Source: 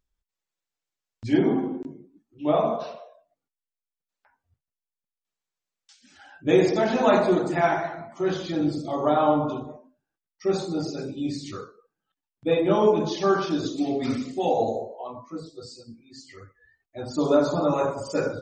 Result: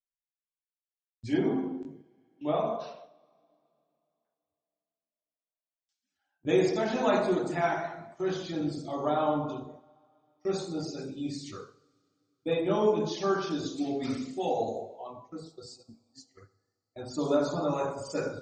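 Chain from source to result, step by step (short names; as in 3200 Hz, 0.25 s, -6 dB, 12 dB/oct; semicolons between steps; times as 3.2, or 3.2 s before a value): gate -44 dBFS, range -26 dB; high shelf 6000 Hz +6 dB; two-slope reverb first 0.69 s, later 3.1 s, from -18 dB, DRR 13.5 dB; gain -6.5 dB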